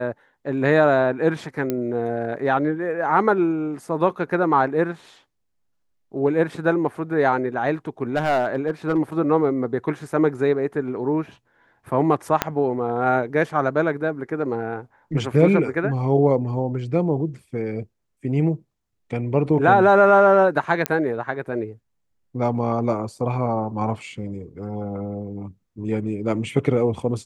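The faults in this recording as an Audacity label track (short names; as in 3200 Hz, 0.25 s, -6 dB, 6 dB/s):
1.700000	1.700000	pop -11 dBFS
8.150000	8.990000	clipped -15 dBFS
12.420000	12.420000	pop -3 dBFS
20.860000	20.860000	pop -5 dBFS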